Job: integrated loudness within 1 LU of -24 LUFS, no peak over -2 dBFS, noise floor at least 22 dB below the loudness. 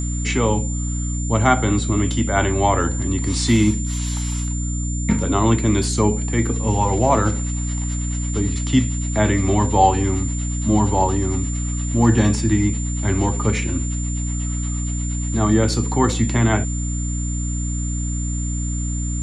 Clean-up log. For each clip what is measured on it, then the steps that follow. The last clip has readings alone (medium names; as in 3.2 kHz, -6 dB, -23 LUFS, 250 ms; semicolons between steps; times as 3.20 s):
hum 60 Hz; highest harmonic 300 Hz; hum level -21 dBFS; steady tone 7.2 kHz; tone level -30 dBFS; loudness -20.5 LUFS; peak level -2.0 dBFS; loudness target -24.0 LUFS
-> de-hum 60 Hz, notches 5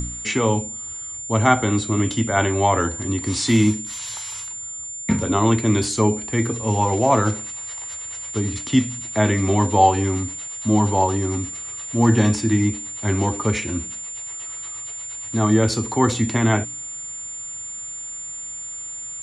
hum not found; steady tone 7.2 kHz; tone level -30 dBFS
-> band-stop 7.2 kHz, Q 30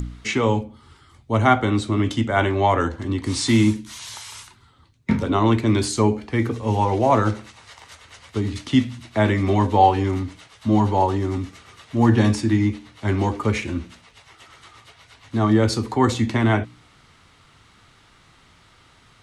steady tone not found; loudness -21.0 LUFS; peak level -3.0 dBFS; loudness target -24.0 LUFS
-> trim -3 dB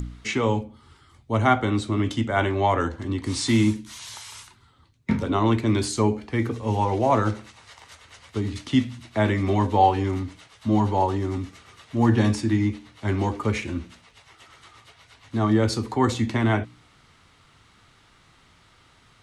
loudness -24.0 LUFS; peak level -6.0 dBFS; noise floor -57 dBFS